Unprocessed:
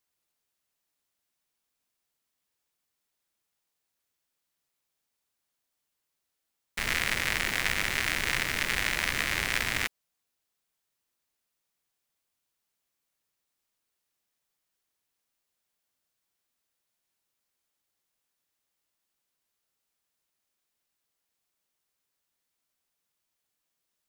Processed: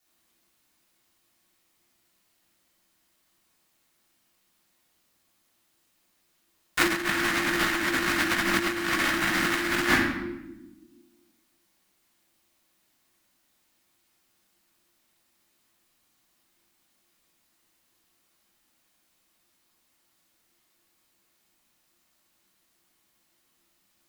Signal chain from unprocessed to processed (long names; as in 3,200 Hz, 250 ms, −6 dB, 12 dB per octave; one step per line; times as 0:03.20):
parametric band 390 Hz −3.5 dB 1.3 octaves
rectangular room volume 450 cubic metres, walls mixed, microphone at 3.3 metres
frequency shifter −350 Hz
compressor whose output falls as the input rises −24 dBFS, ratio −0.5